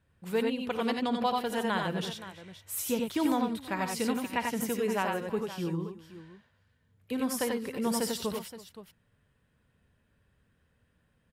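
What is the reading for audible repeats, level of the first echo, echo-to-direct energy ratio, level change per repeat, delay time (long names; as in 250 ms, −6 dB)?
4, −16.0 dB, −2.5 dB, repeats not evenly spaced, 56 ms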